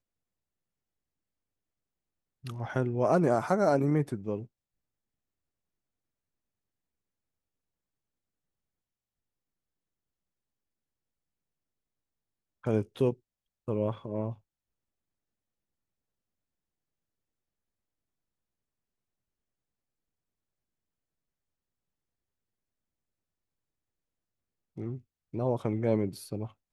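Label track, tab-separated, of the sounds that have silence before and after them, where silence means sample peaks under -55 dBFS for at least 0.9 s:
2.440000	4.460000	sound
12.630000	14.390000	sound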